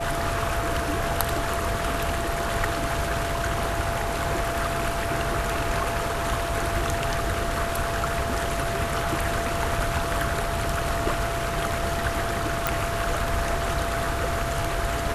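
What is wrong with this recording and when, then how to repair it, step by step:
whistle 680 Hz −30 dBFS
0:12.67: click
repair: click removal
notch filter 680 Hz, Q 30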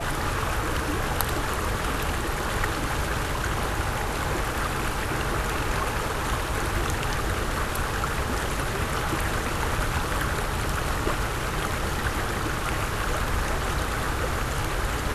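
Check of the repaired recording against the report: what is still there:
none of them is left

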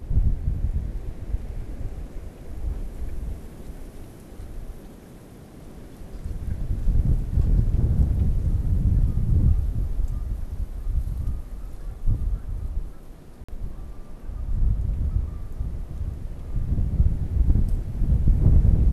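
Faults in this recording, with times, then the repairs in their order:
0:13.44–0:13.48: drop-out 45 ms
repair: repair the gap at 0:13.44, 45 ms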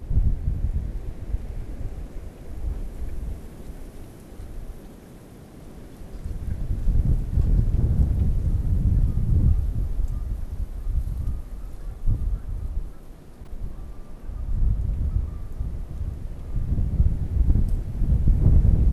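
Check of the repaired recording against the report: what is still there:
none of them is left

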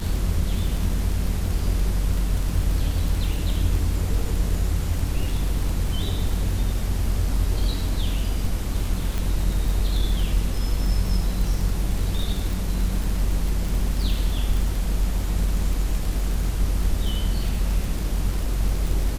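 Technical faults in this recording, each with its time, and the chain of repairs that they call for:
surface crackle 27 per second −25 dBFS
0:09.18: click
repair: click removal

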